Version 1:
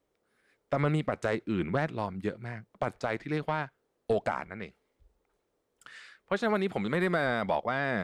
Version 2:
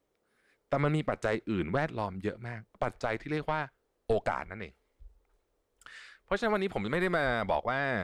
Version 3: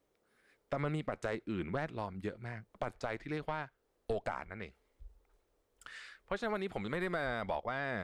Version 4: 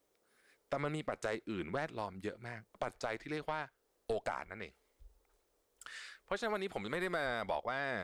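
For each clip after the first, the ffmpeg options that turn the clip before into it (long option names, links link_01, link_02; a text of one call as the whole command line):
ffmpeg -i in.wav -af "asubboost=boost=5.5:cutoff=67" out.wav
ffmpeg -i in.wav -af "acompressor=threshold=-45dB:ratio=1.5" out.wav
ffmpeg -i in.wav -af "bass=frequency=250:gain=-6,treble=frequency=4000:gain=6" out.wav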